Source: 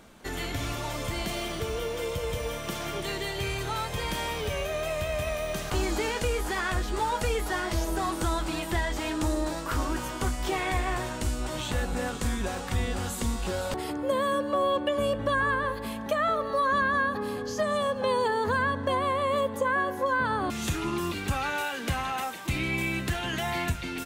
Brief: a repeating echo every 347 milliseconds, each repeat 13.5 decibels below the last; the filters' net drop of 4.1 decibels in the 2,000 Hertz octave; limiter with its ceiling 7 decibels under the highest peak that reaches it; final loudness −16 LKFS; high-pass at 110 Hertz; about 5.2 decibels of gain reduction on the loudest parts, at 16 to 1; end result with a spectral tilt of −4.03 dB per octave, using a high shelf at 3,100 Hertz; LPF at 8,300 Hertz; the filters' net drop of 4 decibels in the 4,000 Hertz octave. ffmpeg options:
ffmpeg -i in.wav -af "highpass=110,lowpass=8300,equalizer=frequency=2000:width_type=o:gain=-6,highshelf=frequency=3100:gain=7.5,equalizer=frequency=4000:width_type=o:gain=-8.5,acompressor=threshold=-28dB:ratio=16,alimiter=level_in=2dB:limit=-24dB:level=0:latency=1,volume=-2dB,aecho=1:1:347|694:0.211|0.0444,volume=18.5dB" out.wav

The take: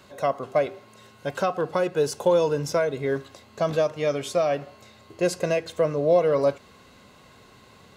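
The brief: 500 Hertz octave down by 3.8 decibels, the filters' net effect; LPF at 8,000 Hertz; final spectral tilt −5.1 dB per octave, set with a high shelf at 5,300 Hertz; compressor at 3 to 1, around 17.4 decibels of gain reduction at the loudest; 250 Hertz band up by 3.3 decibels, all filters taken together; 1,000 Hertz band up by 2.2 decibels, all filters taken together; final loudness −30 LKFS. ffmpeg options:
ffmpeg -i in.wav -af "lowpass=8000,equalizer=frequency=250:width_type=o:gain=8,equalizer=frequency=500:width_type=o:gain=-8,equalizer=frequency=1000:width_type=o:gain=6,highshelf=frequency=5300:gain=-4.5,acompressor=threshold=-43dB:ratio=3,volume=13dB" out.wav

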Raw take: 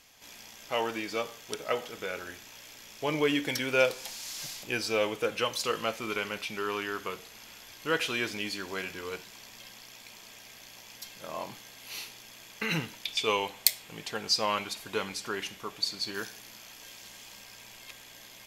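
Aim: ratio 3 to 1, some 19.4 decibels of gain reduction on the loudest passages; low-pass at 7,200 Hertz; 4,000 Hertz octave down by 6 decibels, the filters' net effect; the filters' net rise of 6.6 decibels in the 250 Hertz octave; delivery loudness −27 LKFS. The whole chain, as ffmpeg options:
ffmpeg -i in.wav -af "lowpass=7200,equalizer=frequency=250:width_type=o:gain=8.5,equalizer=frequency=4000:width_type=o:gain=-7.5,acompressor=threshold=-47dB:ratio=3,volume=20.5dB" out.wav

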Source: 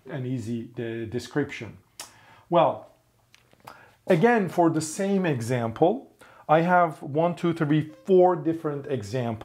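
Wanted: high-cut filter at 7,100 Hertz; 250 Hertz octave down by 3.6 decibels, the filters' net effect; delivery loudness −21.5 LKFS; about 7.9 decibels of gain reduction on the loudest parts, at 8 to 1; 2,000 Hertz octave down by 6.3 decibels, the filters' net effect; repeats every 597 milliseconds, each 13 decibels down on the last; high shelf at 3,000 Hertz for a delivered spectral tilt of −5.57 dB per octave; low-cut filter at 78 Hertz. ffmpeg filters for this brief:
ffmpeg -i in.wav -af "highpass=78,lowpass=7100,equalizer=frequency=250:width_type=o:gain=-5.5,equalizer=frequency=2000:width_type=o:gain=-5.5,highshelf=frequency=3000:gain=-8.5,acompressor=threshold=-24dB:ratio=8,aecho=1:1:597|1194|1791:0.224|0.0493|0.0108,volume=10.5dB" out.wav

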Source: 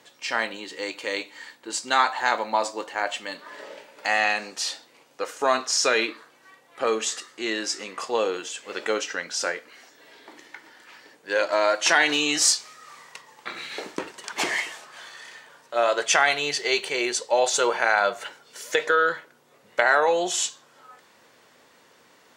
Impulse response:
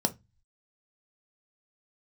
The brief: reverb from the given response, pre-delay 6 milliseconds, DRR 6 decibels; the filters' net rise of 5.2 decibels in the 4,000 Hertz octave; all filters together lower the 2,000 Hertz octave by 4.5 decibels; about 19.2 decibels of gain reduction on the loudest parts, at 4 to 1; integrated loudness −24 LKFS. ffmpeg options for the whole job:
-filter_complex "[0:a]equalizer=frequency=2000:width_type=o:gain=-8.5,equalizer=frequency=4000:width_type=o:gain=9,acompressor=threshold=-37dB:ratio=4,asplit=2[link_01][link_02];[1:a]atrim=start_sample=2205,adelay=6[link_03];[link_02][link_03]afir=irnorm=-1:irlink=0,volume=-13.5dB[link_04];[link_01][link_04]amix=inputs=2:normalize=0,volume=13dB"

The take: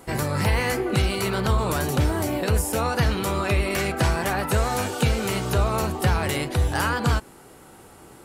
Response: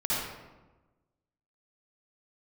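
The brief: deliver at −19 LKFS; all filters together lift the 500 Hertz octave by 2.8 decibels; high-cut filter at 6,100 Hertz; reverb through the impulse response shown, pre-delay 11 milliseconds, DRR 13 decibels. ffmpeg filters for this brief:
-filter_complex "[0:a]lowpass=6100,equalizer=frequency=500:width_type=o:gain=3.5,asplit=2[link_01][link_02];[1:a]atrim=start_sample=2205,adelay=11[link_03];[link_02][link_03]afir=irnorm=-1:irlink=0,volume=-22dB[link_04];[link_01][link_04]amix=inputs=2:normalize=0,volume=3.5dB"

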